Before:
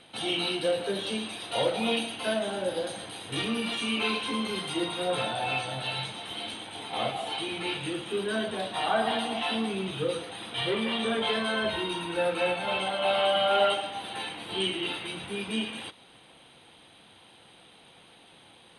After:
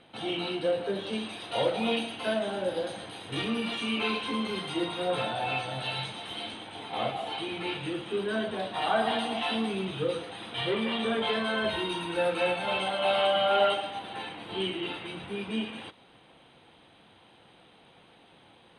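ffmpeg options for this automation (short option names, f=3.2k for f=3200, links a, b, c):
-af "asetnsamples=n=441:p=0,asendcmd='1.13 lowpass f 3600;5.75 lowpass f 6100;6.48 lowpass f 2900;8.82 lowpass f 6400;9.85 lowpass f 3800;11.64 lowpass f 8600;13.27 lowpass f 4000;13.99 lowpass f 2100',lowpass=f=1.8k:p=1"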